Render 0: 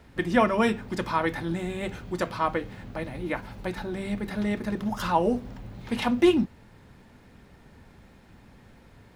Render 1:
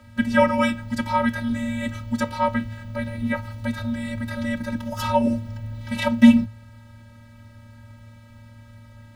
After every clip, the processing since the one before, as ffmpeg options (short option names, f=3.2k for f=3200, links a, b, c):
-af "lowshelf=f=140:g=5,afftfilt=real='hypot(re,im)*cos(PI*b)':imag='0':win_size=512:overlap=0.75,afreqshift=-110,volume=7.5dB"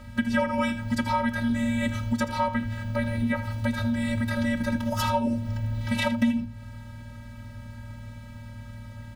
-af "acompressor=threshold=-26dB:ratio=5,aeval=exprs='val(0)+0.00282*(sin(2*PI*50*n/s)+sin(2*PI*2*50*n/s)/2+sin(2*PI*3*50*n/s)/3+sin(2*PI*4*50*n/s)/4+sin(2*PI*5*50*n/s)/5)':c=same,aecho=1:1:80:0.224,volume=3.5dB"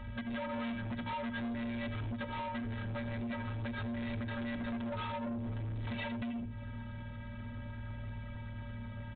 -af "acompressor=threshold=-28dB:ratio=6,flanger=delay=1:depth=5:regen=64:speed=0.49:shape=triangular,aresample=8000,asoftclip=type=tanh:threshold=-39dB,aresample=44100,volume=4dB"